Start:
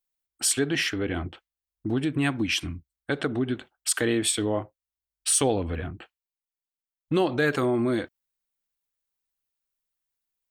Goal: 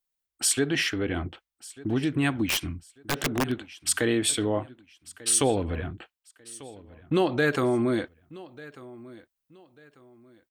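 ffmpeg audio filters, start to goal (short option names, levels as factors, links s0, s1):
-filter_complex "[0:a]aecho=1:1:1193|2386:0.1|0.03,asplit=3[s0][s1][s2];[s0]afade=t=out:st=2.44:d=0.02[s3];[s1]aeval=exprs='(mod(8.41*val(0)+1,2)-1)/8.41':c=same,afade=t=in:st=2.44:d=0.02,afade=t=out:st=3.5:d=0.02[s4];[s2]afade=t=in:st=3.5:d=0.02[s5];[s3][s4][s5]amix=inputs=3:normalize=0"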